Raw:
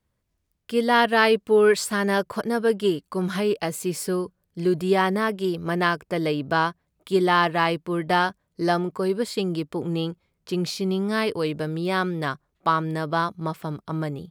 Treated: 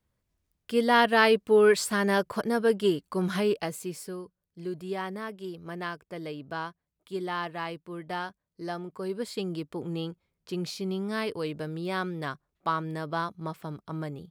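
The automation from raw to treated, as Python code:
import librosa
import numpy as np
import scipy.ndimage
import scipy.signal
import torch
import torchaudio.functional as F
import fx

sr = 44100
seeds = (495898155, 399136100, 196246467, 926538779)

y = fx.gain(x, sr, db=fx.line((3.47, -2.5), (4.15, -13.0), (8.76, -13.0), (9.28, -7.0)))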